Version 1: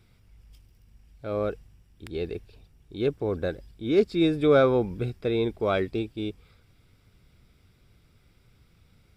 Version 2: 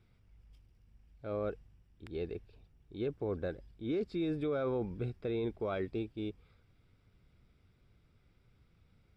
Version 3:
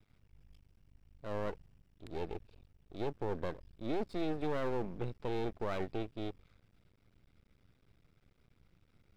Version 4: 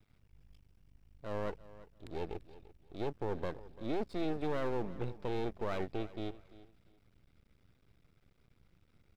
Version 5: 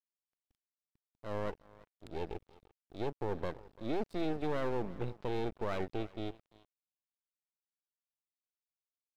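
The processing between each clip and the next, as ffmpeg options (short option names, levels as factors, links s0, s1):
-af "alimiter=limit=0.1:level=0:latency=1:release=17,lowpass=f=2700:p=1,volume=0.447"
-af "aeval=exprs='max(val(0),0)':c=same,volume=1.33"
-af "aecho=1:1:342|684:0.126|0.0302"
-af "aeval=exprs='sgn(val(0))*max(abs(val(0))-0.00282,0)':c=same,volume=1.12"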